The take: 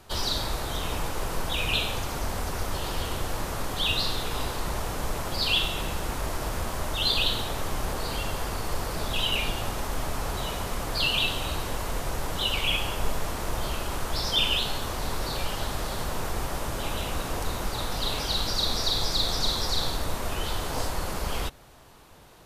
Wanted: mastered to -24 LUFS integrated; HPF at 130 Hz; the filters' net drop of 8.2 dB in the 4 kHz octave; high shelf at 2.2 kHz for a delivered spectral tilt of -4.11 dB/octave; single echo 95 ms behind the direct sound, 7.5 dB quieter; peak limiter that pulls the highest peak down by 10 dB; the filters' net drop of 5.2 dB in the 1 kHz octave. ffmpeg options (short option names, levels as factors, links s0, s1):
-af "highpass=130,equalizer=f=1000:t=o:g=-5.5,highshelf=f=2200:g=-4.5,equalizer=f=4000:t=o:g=-6,alimiter=level_in=1.58:limit=0.0631:level=0:latency=1,volume=0.631,aecho=1:1:95:0.422,volume=4.22"